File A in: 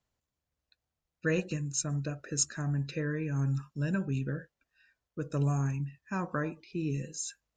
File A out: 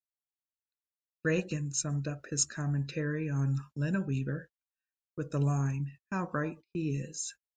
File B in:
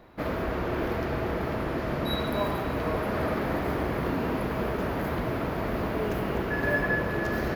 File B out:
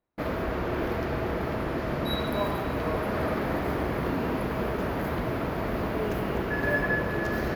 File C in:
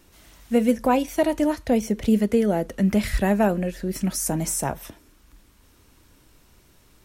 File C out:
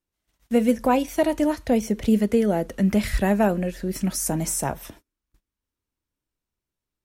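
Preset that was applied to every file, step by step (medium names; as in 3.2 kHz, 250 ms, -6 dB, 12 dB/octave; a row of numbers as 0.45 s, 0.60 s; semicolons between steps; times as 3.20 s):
gate -46 dBFS, range -31 dB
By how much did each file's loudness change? 0.0 LU, 0.0 LU, 0.0 LU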